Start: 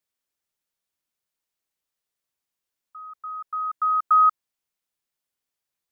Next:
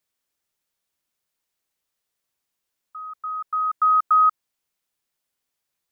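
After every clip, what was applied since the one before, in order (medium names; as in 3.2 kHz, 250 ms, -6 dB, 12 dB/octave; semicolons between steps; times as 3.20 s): peak limiter -16.5 dBFS, peak gain reduction 4.5 dB; trim +4.5 dB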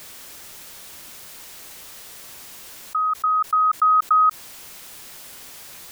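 level flattener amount 70%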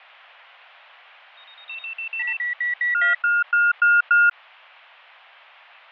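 ever faster or slower copies 110 ms, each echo +6 st, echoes 3, each echo -6 dB; Chebyshev shaper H 4 -20 dB, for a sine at -8 dBFS; mistuned SSB +160 Hz 480–2900 Hz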